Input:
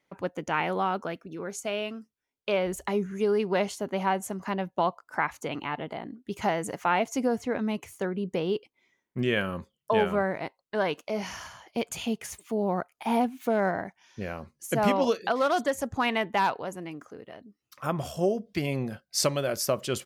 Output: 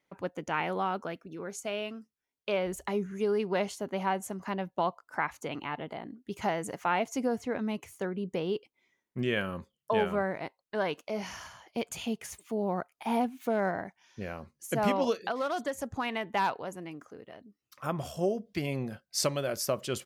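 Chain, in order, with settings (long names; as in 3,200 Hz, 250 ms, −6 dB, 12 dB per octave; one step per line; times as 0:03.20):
0:15.26–0:16.28: downward compressor 2 to 1, threshold −27 dBFS, peak gain reduction 4 dB
level −3.5 dB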